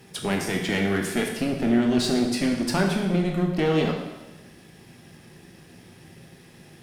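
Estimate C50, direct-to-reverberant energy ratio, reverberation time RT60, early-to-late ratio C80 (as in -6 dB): 4.5 dB, 1.0 dB, 1.1 s, 6.5 dB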